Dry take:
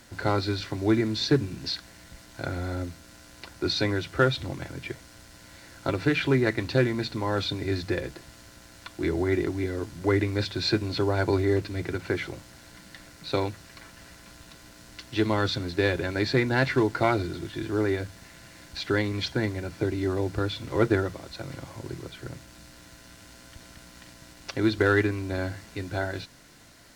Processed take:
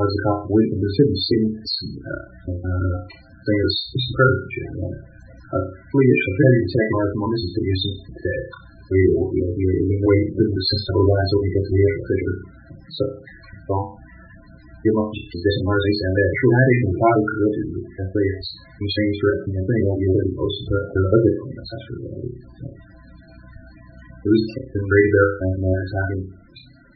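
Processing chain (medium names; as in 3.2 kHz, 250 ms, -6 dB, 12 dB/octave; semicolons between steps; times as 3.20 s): slices played last to first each 165 ms, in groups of 3; flutter echo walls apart 5.5 m, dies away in 0.43 s; loudest bins only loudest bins 16; trim +7 dB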